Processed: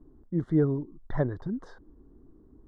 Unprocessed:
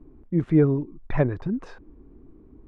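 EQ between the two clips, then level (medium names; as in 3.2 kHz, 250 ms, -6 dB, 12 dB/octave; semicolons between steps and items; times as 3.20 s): Butterworth band-stop 2.5 kHz, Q 1.8; -5.5 dB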